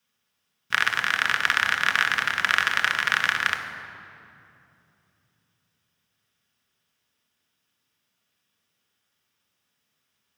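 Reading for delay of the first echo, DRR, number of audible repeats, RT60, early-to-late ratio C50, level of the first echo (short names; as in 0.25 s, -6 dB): none, 3.5 dB, none, 2.8 s, 7.0 dB, none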